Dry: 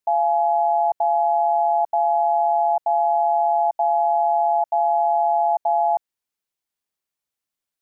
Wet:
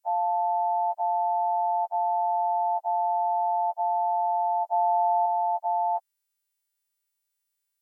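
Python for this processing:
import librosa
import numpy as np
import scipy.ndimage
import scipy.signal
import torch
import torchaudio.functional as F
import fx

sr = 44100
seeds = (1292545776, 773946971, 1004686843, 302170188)

y = fx.freq_snap(x, sr, grid_st=2)
y = fx.low_shelf(y, sr, hz=500.0, db=8.5, at=(4.68, 5.26))
y = F.gain(torch.from_numpy(y), -6.0).numpy()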